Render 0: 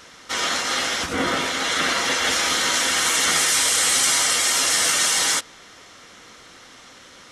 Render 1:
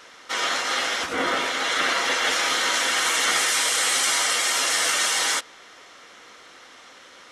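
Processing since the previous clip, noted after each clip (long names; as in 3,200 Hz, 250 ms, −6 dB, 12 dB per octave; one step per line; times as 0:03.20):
bass and treble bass −13 dB, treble −5 dB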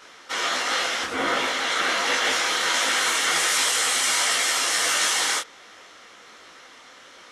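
micro pitch shift up and down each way 48 cents
level +3.5 dB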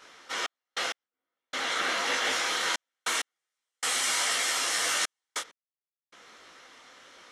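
gate pattern "xxx..x....xxxxx" 98 BPM −60 dB
level −5.5 dB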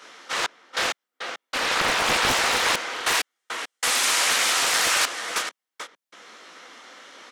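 high-pass filter 170 Hz 24 dB per octave
slap from a distant wall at 75 metres, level −6 dB
highs frequency-modulated by the lows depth 0.88 ms
level +6.5 dB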